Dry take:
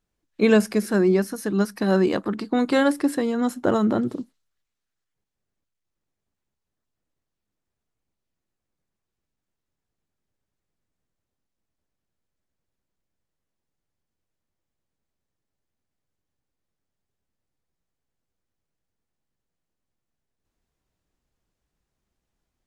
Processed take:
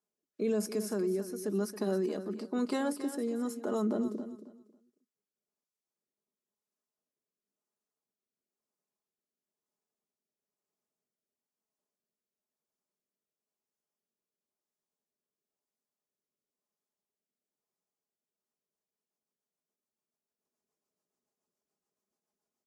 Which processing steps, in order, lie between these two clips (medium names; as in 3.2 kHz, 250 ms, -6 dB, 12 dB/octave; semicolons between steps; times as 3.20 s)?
high-pass 300 Hz 12 dB/octave; high-order bell 2.5 kHz -8.5 dB; comb 4.8 ms, depth 50%; dynamic bell 880 Hz, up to -6 dB, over -37 dBFS, Q 0.99; peak limiter -18.5 dBFS, peak gain reduction 10.5 dB; rotary cabinet horn 1 Hz, later 7 Hz, at 18.22 s; on a send: feedback delay 273 ms, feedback 22%, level -12 dB; on the sum: trim -4 dB